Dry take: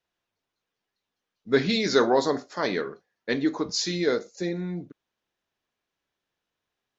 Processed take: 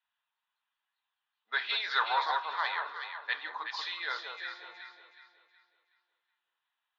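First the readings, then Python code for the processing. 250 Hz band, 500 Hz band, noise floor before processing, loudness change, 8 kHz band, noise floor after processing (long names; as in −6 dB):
below −35 dB, −23.5 dB, below −85 dBFS, −7.0 dB, can't be measured, below −85 dBFS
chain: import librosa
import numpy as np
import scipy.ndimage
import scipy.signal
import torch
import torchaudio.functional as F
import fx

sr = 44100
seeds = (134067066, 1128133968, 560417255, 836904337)

y = scipy.signal.sosfilt(scipy.signal.ellip(3, 1.0, 80, [890.0, 3600.0], 'bandpass', fs=sr, output='sos'), x)
y = fx.notch(y, sr, hz=2200.0, q=11.0)
y = fx.echo_alternate(y, sr, ms=185, hz=1200.0, feedback_pct=60, wet_db=-2.5)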